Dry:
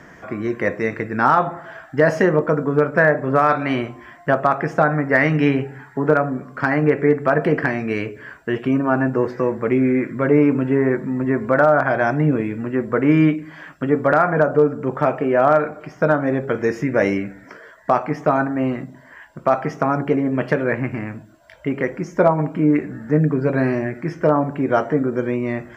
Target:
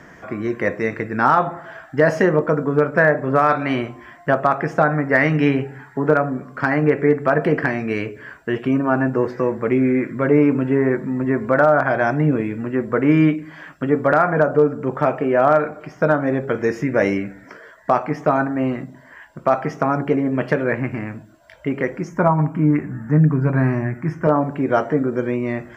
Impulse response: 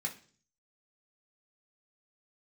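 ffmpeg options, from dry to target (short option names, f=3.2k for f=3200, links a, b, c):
-filter_complex "[0:a]asettb=1/sr,asplit=3[a][b][c];[a]atrim=end=22.094[d];[b]atrim=start=22.09:end=24.27,asetpts=PTS-STARTPTS,afade=t=in:d=0.004:c=qsin,afade=t=out:st=2.176:d=0.004:c=qsin,equalizer=f=125:t=o:w=1:g=7,equalizer=f=500:t=o:w=1:g=-8,equalizer=f=1k:t=o:w=1:g=5,equalizer=f=4k:t=o:w=1:g=-12[e];[c]atrim=start=24.266[f];[d][e]acrossfade=d=0.004:c1=hsin:c2=qsin[g];[g][f]acrossfade=d=0.004:c1=qsin:c2=hsin"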